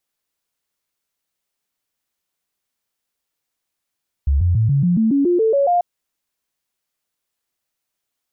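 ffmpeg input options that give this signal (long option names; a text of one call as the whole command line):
ffmpeg -f lavfi -i "aevalsrc='0.237*clip(min(mod(t,0.14),0.14-mod(t,0.14))/0.005,0,1)*sin(2*PI*69.9*pow(2,floor(t/0.14)/3)*mod(t,0.14))':duration=1.54:sample_rate=44100" out.wav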